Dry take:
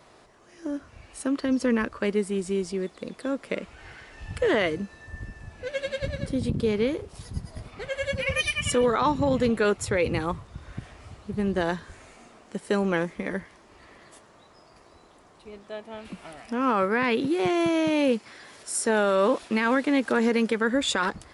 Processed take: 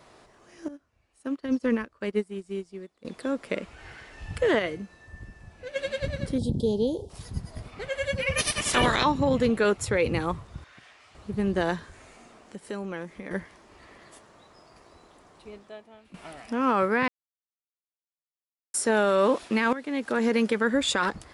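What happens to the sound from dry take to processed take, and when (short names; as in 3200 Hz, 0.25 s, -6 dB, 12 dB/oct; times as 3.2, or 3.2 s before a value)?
0.68–3.05 upward expander 2.5:1, over -35 dBFS
4.59–5.76 resonator 180 Hz, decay 0.34 s, mix 50%
6.38–7.1 elliptic band-stop 880–3400 Hz
8.37–9.03 spectral limiter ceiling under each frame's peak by 27 dB
10.64–11.15 band-pass 2900 Hz, Q 0.6
11.85–13.31 compressor 1.5:1, threshold -48 dBFS
15.5–16.14 fade out quadratic, to -15.5 dB
17.08–18.74 mute
19.73–20.38 fade in, from -15 dB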